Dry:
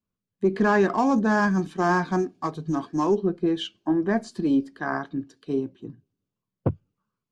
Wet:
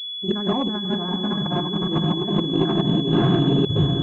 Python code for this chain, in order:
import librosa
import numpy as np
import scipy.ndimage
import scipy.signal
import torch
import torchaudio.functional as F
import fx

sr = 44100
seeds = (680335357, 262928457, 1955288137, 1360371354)

p1 = fx.rattle_buzz(x, sr, strikes_db=-24.0, level_db=-31.0)
p2 = fx.peak_eq(p1, sr, hz=130.0, db=14.0, octaves=0.96)
p3 = fx.transient(p2, sr, attack_db=6, sustain_db=-6)
p4 = fx.level_steps(p3, sr, step_db=21)
p5 = p3 + (p4 * 10.0 ** (-1.0 / 20.0))
p6 = fx.stretch_vocoder(p5, sr, factor=0.55)
p7 = p6 + fx.echo_diffused(p6, sr, ms=558, feedback_pct=42, wet_db=-3.5, dry=0)
p8 = fx.room_shoebox(p7, sr, seeds[0], volume_m3=1900.0, walls='furnished', distance_m=0.93)
p9 = fx.over_compress(p8, sr, threshold_db=-21.0, ratio=-1.0)
p10 = fx.pwm(p9, sr, carrier_hz=3400.0)
y = p10 * 10.0 ** (-1.5 / 20.0)